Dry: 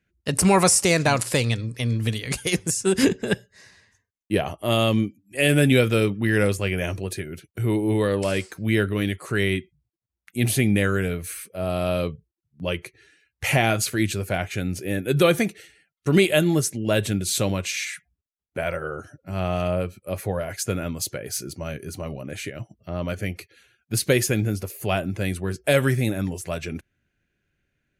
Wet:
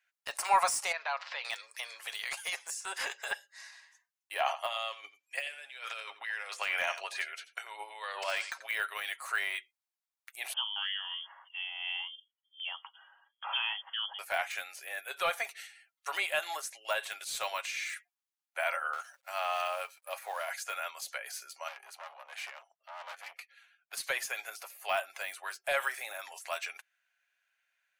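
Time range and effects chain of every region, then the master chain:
0:00.92–0:01.45: Bessel low-pass filter 2,700 Hz, order 8 + downward compressor 2 to 1, threshold −34 dBFS
0:04.40–0:08.69: low-pass filter 6,000 Hz + compressor whose output falls as the input rises −25 dBFS, ratio −0.5 + single-tap delay 87 ms −15.5 dB
0:10.53–0:14.19: downward compressor 1.5 to 1, threshold −51 dBFS + two-band tremolo in antiphase 2.9 Hz, depth 50%, crossover 1,900 Hz + voice inversion scrambler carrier 3,300 Hz
0:18.93–0:20.50: mu-law and A-law mismatch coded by A + multiband upward and downward compressor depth 40%
0:21.68–0:23.93: bass and treble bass +3 dB, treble −10 dB + gain into a clipping stage and back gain 28 dB + tube saturation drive 31 dB, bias 0.65
whole clip: Butterworth high-pass 740 Hz 36 dB per octave; de-essing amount 95%; comb filter 7.3 ms, depth 31%

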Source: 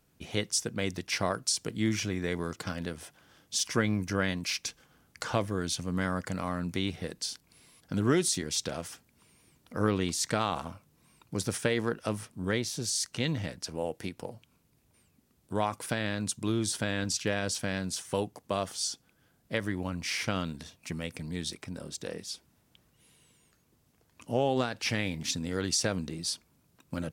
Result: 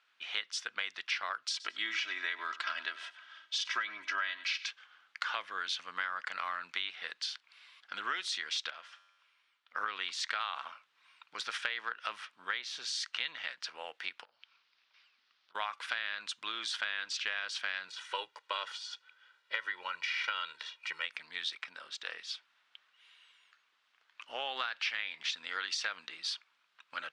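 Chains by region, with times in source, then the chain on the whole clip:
0:01.50–0:04.68: low-pass filter 9,300 Hz + comb filter 3.1 ms, depth 78% + repeating echo 98 ms, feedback 28%, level −18 dB
0:08.70–0:09.75: high-shelf EQ 10,000 Hz −7 dB + tuned comb filter 92 Hz, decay 1.4 s, mix 70%
0:14.24–0:15.55: high shelf with overshoot 7,300 Hz −14 dB, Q 3 + downward compressor 16 to 1, threshold −53 dBFS + hum removal 52.31 Hz, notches 37
0:17.88–0:21.05: de-essing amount 100% + comb filter 2.1 ms, depth 89%
whole clip: Chebyshev band-pass filter 1,300–3,500 Hz, order 2; downward compressor 6 to 1, threshold −39 dBFS; level +7.5 dB

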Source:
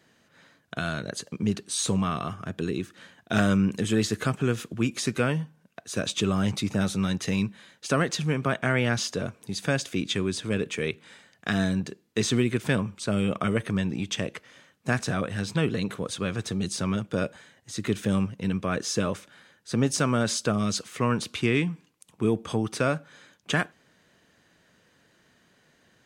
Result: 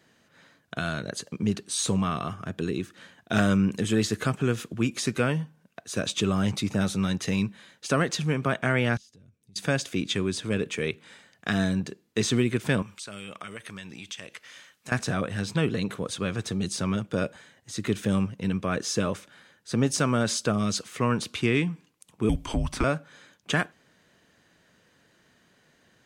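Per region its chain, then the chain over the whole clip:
0:08.97–0:09.56: guitar amp tone stack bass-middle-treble 10-0-1 + downward compressor 10 to 1, threshold −50 dBFS
0:12.82–0:14.92: tilt shelving filter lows −8 dB, about 900 Hz + downward compressor 2.5 to 1, threshold −41 dBFS
0:22.29–0:22.84: frequency shifter −180 Hz + multiband upward and downward compressor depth 70%
whole clip: no processing

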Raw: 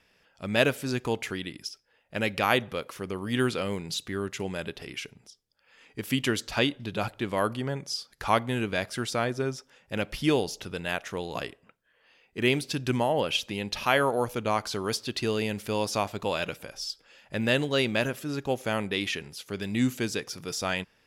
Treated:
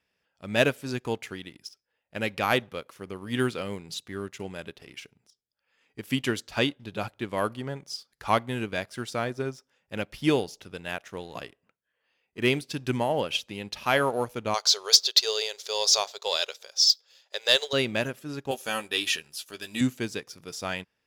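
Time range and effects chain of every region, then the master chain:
0:14.54–0:17.73: linear-phase brick-wall high-pass 380 Hz + flat-topped bell 4,900 Hz +14.5 dB 1.3 octaves
0:18.51–0:19.81: Butterworth band-reject 2,100 Hz, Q 7.3 + spectral tilt +3 dB per octave + double-tracking delay 13 ms −5 dB
whole clip: high-pass filter 41 Hz; leveller curve on the samples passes 1; expander for the loud parts 1.5 to 1, over −33 dBFS

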